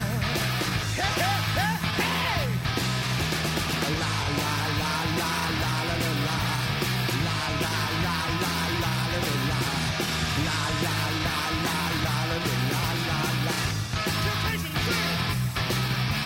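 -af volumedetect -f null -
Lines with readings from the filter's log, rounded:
mean_volume: -26.4 dB
max_volume: -13.4 dB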